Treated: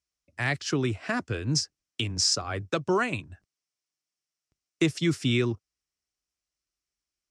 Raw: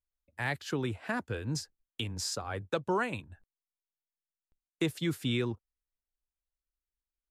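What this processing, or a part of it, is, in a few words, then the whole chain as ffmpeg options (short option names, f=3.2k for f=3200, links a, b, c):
car door speaker: -af "highpass=89,equalizer=f=210:t=q:w=4:g=-5,equalizer=f=500:t=q:w=4:g=-7,equalizer=f=880:t=q:w=4:g=-9,equalizer=f=1.6k:t=q:w=4:g=-4,equalizer=f=3.6k:t=q:w=4:g=-4,equalizer=f=5.5k:t=q:w=4:g=8,lowpass=f=8.8k:w=0.5412,lowpass=f=8.8k:w=1.3066,volume=8dB"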